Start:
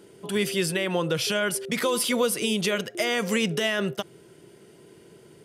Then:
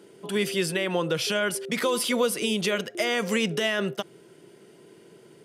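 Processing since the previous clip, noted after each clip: HPF 150 Hz; high shelf 7500 Hz -4 dB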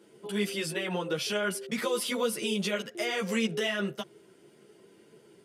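ensemble effect; gain -2 dB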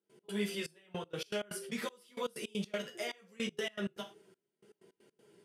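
non-linear reverb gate 0.13 s falling, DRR 3.5 dB; step gate ".x.xxxx...x.x" 159 bpm -24 dB; gain -7.5 dB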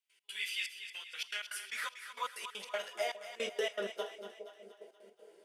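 high-pass sweep 2400 Hz -> 510 Hz, 0.94–3.55; split-band echo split 650 Hz, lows 0.409 s, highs 0.237 s, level -10 dB

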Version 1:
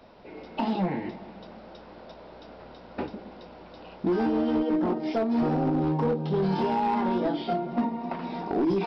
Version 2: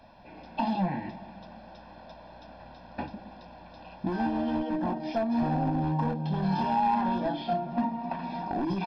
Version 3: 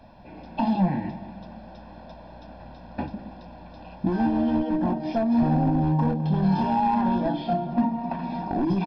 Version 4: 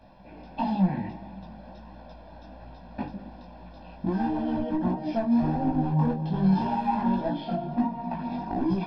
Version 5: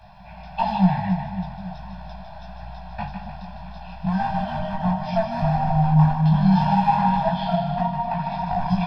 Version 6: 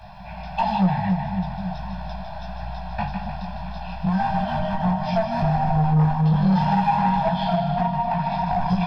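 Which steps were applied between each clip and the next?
comb 1.2 ms, depth 79%; gain -3.5 dB
low shelf 500 Hz +8 dB; echo 0.204 s -18 dB
chorus voices 2, 1.5 Hz, delay 18 ms, depth 3 ms
elliptic band-stop 180–680 Hz, stop band 40 dB; split-band echo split 750 Hz, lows 0.271 s, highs 0.152 s, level -6.5 dB; gain +8.5 dB
in parallel at +2.5 dB: compressor, threshold -27 dBFS, peak gain reduction 15 dB; on the sum: soft clip -9.5 dBFS, distortion -18 dB; gain -2 dB

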